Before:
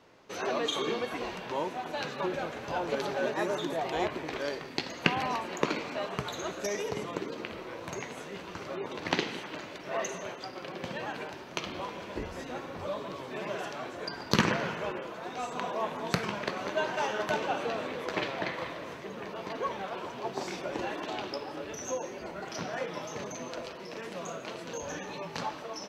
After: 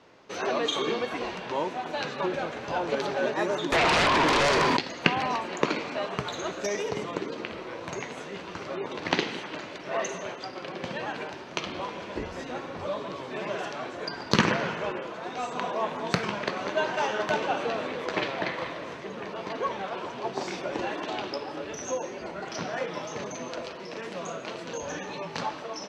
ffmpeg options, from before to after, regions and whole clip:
ffmpeg -i in.wav -filter_complex "[0:a]asettb=1/sr,asplit=3[link_01][link_02][link_03];[link_01]atrim=end=3.724[link_04];[link_02]atrim=start=3.72:end=4.77,asetpts=PTS-STARTPTS,afade=type=in:duration=0.004:curve=qsin,afade=type=out:start_time=1.046:duration=0.004:curve=qsin,equalizer=frequency=1000:width_type=o:width=0.35:gain=13,acompressor=threshold=-34dB:ratio=2.5:attack=3.2:release=140:knee=1:detection=peak,aeval=exprs='0.0794*sin(PI/2*5.62*val(0)/0.0794)':channel_layout=same[link_05];[link_03]atrim=start=4.766[link_06];[link_04][link_05]acrossfade=duration=0.004:curve1=hsin:curve2=qsin[link_07];[link_07][link_06]acrossfade=duration=0.004:curve1=qsin:curve2=hsin,lowpass=7300,lowshelf=frequency=85:gain=-5,volume=3.5dB" out.wav

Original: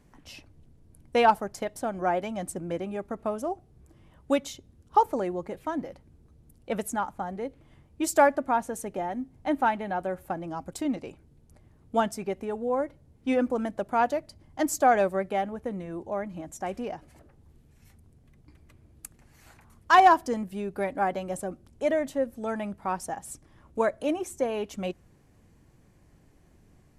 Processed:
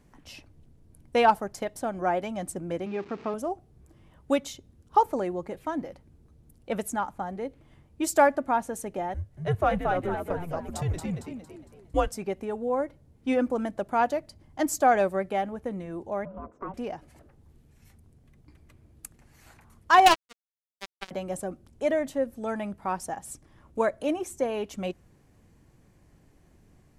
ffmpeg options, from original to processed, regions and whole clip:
ffmpeg -i in.wav -filter_complex "[0:a]asettb=1/sr,asplit=3[link_01][link_02][link_03];[link_01]atrim=end=2.864[link_04];[link_02]atrim=start=2.86:end=3.34,asetpts=PTS-STARTPTS,afade=type=in:duration=0.004:curve=qsin,afade=type=out:start_time=0.476:duration=0.004:curve=qsin,aeval=exprs='val(0)+0.5*0.0075*sgn(val(0))':channel_layout=same,highpass=150,equalizer=frequency=400:width_type=q:width=4:gain=4,equalizer=frequency=590:width_type=q:width=4:gain=-8,equalizer=frequency=2400:width_type=q:width=4:gain=5,lowpass=frequency=5500:width=0.5412,lowpass=frequency=5500:width=1.3066[link_05];[link_03]atrim=start=3.336[link_06];[link_04][link_05]acrossfade=duration=0.004:curve1=hsin:curve2=qsin[link_07];[link_07][link_06]acrossfade=duration=0.004:curve1=qsin:curve2=hsin,asettb=1/sr,asplit=3[link_08][link_09][link_10];[link_08]atrim=end=9.144[link_11];[link_09]atrim=start=9.14:end=12.12,asetpts=PTS-STARTPTS,afade=type=in:duration=0.004:curve=qsin,afade=type=out:start_time=2.976:duration=0.004:curve=qsin,afreqshift=-170,asplit=6[link_12][link_13][link_14][link_15][link_16][link_17];[link_13]adelay=228,afreqshift=75,volume=-4dB[link_18];[link_14]adelay=456,afreqshift=150,volume=-12.2dB[link_19];[link_15]adelay=684,afreqshift=225,volume=-20.4dB[link_20];[link_16]adelay=912,afreqshift=300,volume=-28.5dB[link_21];[link_17]adelay=1140,afreqshift=375,volume=-36.7dB[link_22];[link_12][link_18][link_19][link_20][link_21][link_22]amix=inputs=6:normalize=0,atrim=end_sample=131418[link_23];[link_10]atrim=start=12.116[link_24];[link_11][link_23]acrossfade=duration=0.004:curve1=hsin:curve2=qsin[link_25];[link_25][link_24]acrossfade=duration=0.004:curve1=qsin:curve2=hsin,asettb=1/sr,asplit=3[link_26][link_27][link_28];[link_26]atrim=end=16.254[link_29];[link_27]atrim=start=16.25:end=16.74,asetpts=PTS-STARTPTS,afade=type=in:duration=0.004:curve=qsin,afade=type=out:start_time=0.486:duration=0.004:curve=qsin,lowpass=frequency=1000:width_type=q:width=2.4,acompressor=threshold=-31dB:ratio=2.5:attack=3.2:release=140:knee=1:detection=peak,aeval=exprs='val(0)*sin(2*PI*380*n/s)':channel_layout=same[link_30];[link_28]atrim=start=16.736[link_31];[link_29][link_30]acrossfade=duration=0.004:curve1=hsin:curve2=qsin[link_32];[link_32][link_31]acrossfade=duration=0.004:curve1=qsin:curve2=hsin,asettb=1/sr,asplit=3[link_33][link_34][link_35];[link_33]atrim=end=20.064[link_36];[link_34]atrim=start=20.06:end=21.11,asetpts=PTS-STARTPTS,afade=type=in:duration=0.004:curve=qsin,afade=type=out:start_time=1.046:duration=0.004:curve=qsin,lowpass=7800,highshelf=frequency=2100:width_type=q:width=3:gain=8,acrusher=bits=2:mix=0:aa=0.5[link_37];[link_35]atrim=start=21.106[link_38];[link_36][link_37]acrossfade=duration=0.004:curve1=hsin:curve2=qsin[link_39];[link_39][link_38]acrossfade=duration=0.004:curve1=qsin:curve2=hsin" out.wav

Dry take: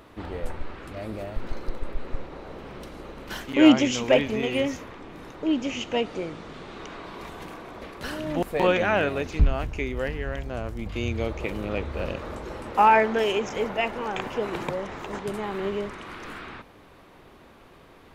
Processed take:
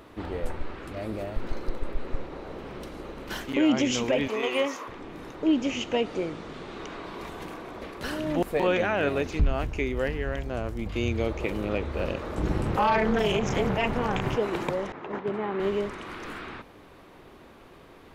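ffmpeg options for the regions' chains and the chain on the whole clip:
ffmpeg -i in.wav -filter_complex "[0:a]asettb=1/sr,asplit=3[link_01][link_02][link_03];[link_01]atrim=end=4.284[link_04];[link_02]atrim=start=4.28:end=4.88,asetpts=PTS-STARTPTS,afade=type=in:duration=0.004:curve=qsin,afade=type=out:start_time=0.596:duration=0.004:curve=qsin,highpass=410,equalizer=frequency=1100:width=3.1:gain=11[link_05];[link_03]atrim=start=4.876[link_06];[link_04][link_05]acrossfade=duration=0.004:curve1=hsin:curve2=qsin[link_07];[link_07][link_06]acrossfade=duration=0.004:curve1=qsin:curve2=hsin,asettb=1/sr,asplit=3[link_08][link_09][link_10];[link_08]atrim=end=12.374[link_11];[link_09]atrim=start=12.37:end=14.36,asetpts=PTS-STARTPTS,afade=type=in:duration=0.004:curve=qsin,afade=type=out:start_time=1.986:duration=0.004:curve=qsin,lowshelf=frequency=210:width_type=q:width=1.5:gain=11,aeval=exprs='0.422*sin(PI/2*1.41*val(0)/0.422)':channel_layout=same,tremolo=f=250:d=0.889[link_12];[link_10]atrim=start=14.356[link_13];[link_11][link_12]acrossfade=duration=0.004:curve1=hsin:curve2=qsin[link_14];[link_14][link_13]acrossfade=duration=0.004:curve1=qsin:curve2=hsin,asettb=1/sr,asplit=3[link_15][link_16][link_17];[link_15]atrim=end=14.924[link_18];[link_16]atrim=start=14.92:end=15.6,asetpts=PTS-STARTPTS,afade=type=in:duration=0.004:curve=qsin,afade=type=out:start_time=0.676:duration=0.004:curve=qsin,highpass=120,lowpass=2400,agate=range=-33dB:threshold=-35dB:ratio=3:release=100:detection=peak[link_19];[link_17]atrim=start=15.596[link_20];[link_18][link_19]acrossfade=duration=0.004:curve1=hsin:curve2=qsin[link_21];[link_21][link_20]acrossfade=duration=0.004:curve1=qsin:curve2=hsin,equalizer=frequency=350:width=1.5:gain=2.5,alimiter=limit=-14.5dB:level=0:latency=1:release=69" out.wav

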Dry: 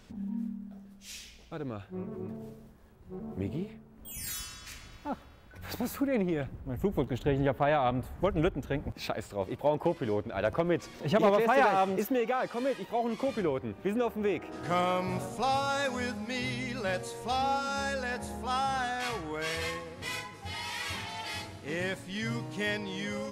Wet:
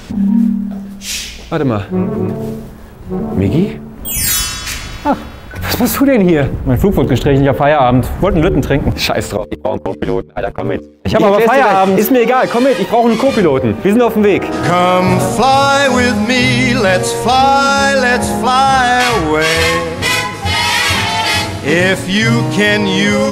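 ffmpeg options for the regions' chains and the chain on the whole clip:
ffmpeg -i in.wav -filter_complex "[0:a]asettb=1/sr,asplit=3[link_01][link_02][link_03];[link_01]atrim=end=9.374[link_04];[link_02]atrim=start=9.37:end=11.15,asetpts=PTS-STARTPTS,afade=type=in:duration=0.004:curve=qsin,afade=type=out:start_time=1.776:duration=0.004:curve=qsin,agate=range=-33dB:threshold=-34dB:ratio=16:release=100:detection=peak,acompressor=threshold=-32dB:ratio=10:attack=3.2:release=140:knee=1:detection=peak,aeval=exprs='val(0)*sin(2*PI*50*n/s)':channel_layout=same[link_05];[link_03]atrim=start=11.146[link_06];[link_04][link_05]acrossfade=duration=0.004:curve1=hsin:curve2=qsin[link_07];[link_07][link_06]acrossfade=duration=0.004:curve1=qsin:curve2=hsin,bandreject=frequency=74.62:width_type=h:width=4,bandreject=frequency=149.24:width_type=h:width=4,bandreject=frequency=223.86:width_type=h:width=4,bandreject=frequency=298.48:width_type=h:width=4,bandreject=frequency=373.1:width_type=h:width=4,bandreject=frequency=447.72:width_type=h:width=4,bandreject=frequency=522.34:width_type=h:width=4,alimiter=level_in=25.5dB:limit=-1dB:release=50:level=0:latency=1,volume=-1dB" out.wav

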